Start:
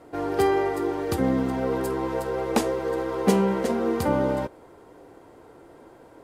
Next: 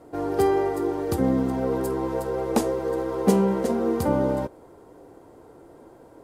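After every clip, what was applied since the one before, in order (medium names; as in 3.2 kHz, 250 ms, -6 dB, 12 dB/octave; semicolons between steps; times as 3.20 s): peaking EQ 2.4 kHz -7.5 dB 2.1 oct; trim +1.5 dB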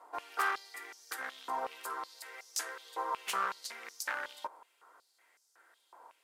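one-sided wavefolder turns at -17 dBFS; step-sequenced high-pass 5.4 Hz 990–5600 Hz; trim -6 dB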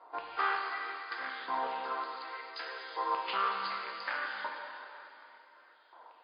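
plate-style reverb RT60 3.2 s, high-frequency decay 0.9×, DRR -0.5 dB; MP3 24 kbps 11.025 kHz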